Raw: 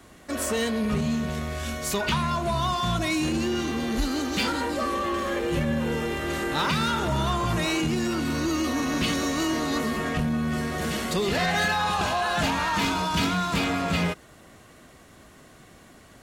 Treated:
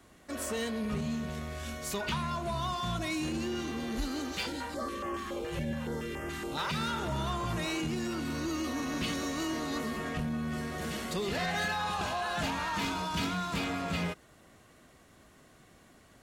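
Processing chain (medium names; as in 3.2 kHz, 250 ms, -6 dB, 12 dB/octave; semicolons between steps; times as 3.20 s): 4.32–6.74 s: step-sequenced notch 7.1 Hz 250–3900 Hz; trim -8 dB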